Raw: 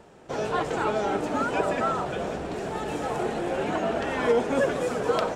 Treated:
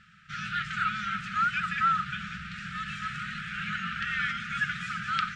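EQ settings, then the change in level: brick-wall FIR band-stop 210–1200 Hz; LPF 3600 Hz 12 dB/oct; low shelf 180 Hz -12 dB; +4.5 dB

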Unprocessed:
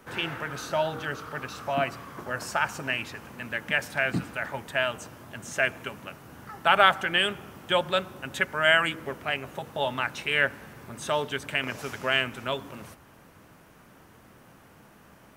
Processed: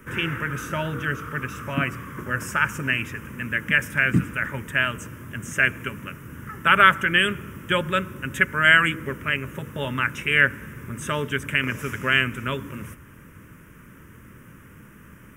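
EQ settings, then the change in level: low shelf 190 Hz +5.5 dB; fixed phaser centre 1800 Hz, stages 4; +7.0 dB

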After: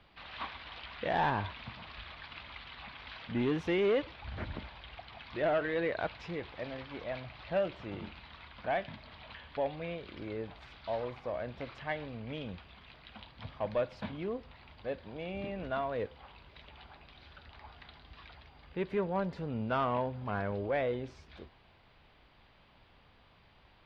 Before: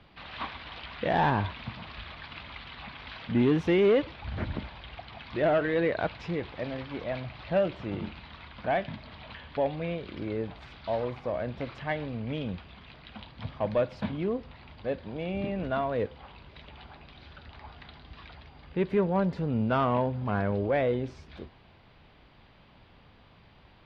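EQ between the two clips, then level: bell 170 Hz -5.5 dB 2.7 oct; -3.5 dB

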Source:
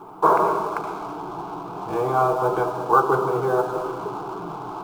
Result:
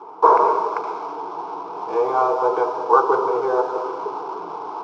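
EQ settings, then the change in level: speaker cabinet 320–6000 Hz, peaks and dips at 460 Hz +10 dB, 950 Hz +9 dB, 2200 Hz +4 dB, 5400 Hz +7 dB; -2.5 dB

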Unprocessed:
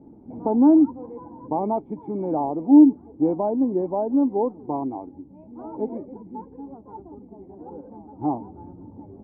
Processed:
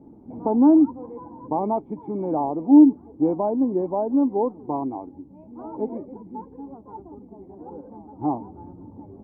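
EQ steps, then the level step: bell 1100 Hz +3.5 dB 0.37 oct; 0.0 dB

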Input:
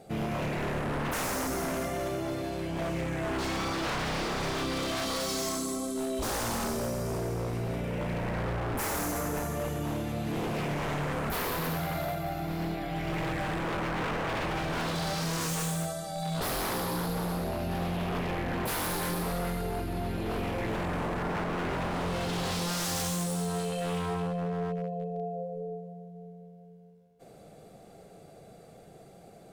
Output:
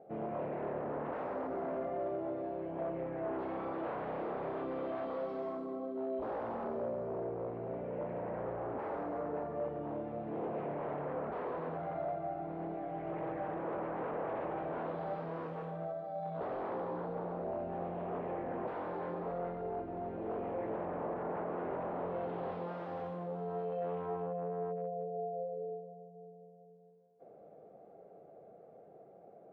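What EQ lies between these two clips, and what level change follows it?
band-pass 570 Hz, Q 1.3; air absorption 480 m; 0.0 dB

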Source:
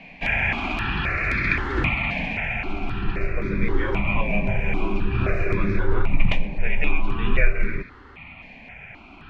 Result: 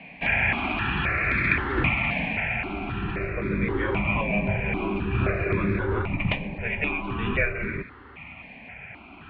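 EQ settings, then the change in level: HPF 61 Hz 12 dB/oct; LPF 3500 Hz 24 dB/oct; 0.0 dB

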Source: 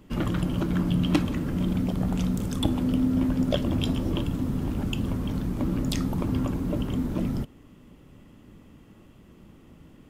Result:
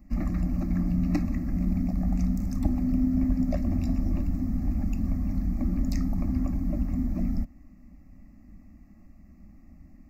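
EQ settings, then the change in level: low shelf 250 Hz +10.5 dB; fixed phaser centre 640 Hz, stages 8; fixed phaser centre 2200 Hz, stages 8; -2.0 dB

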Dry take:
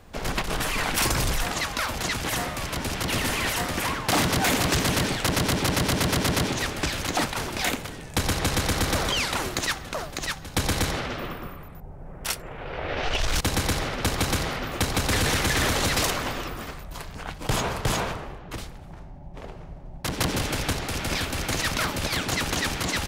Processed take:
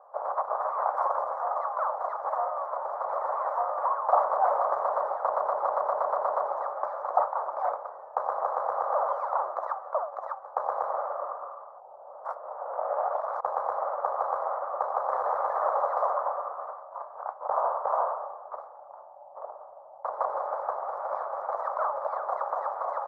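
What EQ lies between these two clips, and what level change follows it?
elliptic band-pass 560–1200 Hz, stop band 50 dB; +5.5 dB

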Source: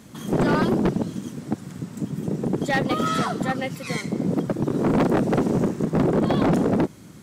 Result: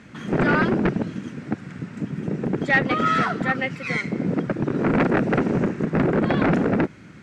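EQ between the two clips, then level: air absorption 110 m; band shelf 1900 Hz +8.5 dB 1.2 oct; 0.0 dB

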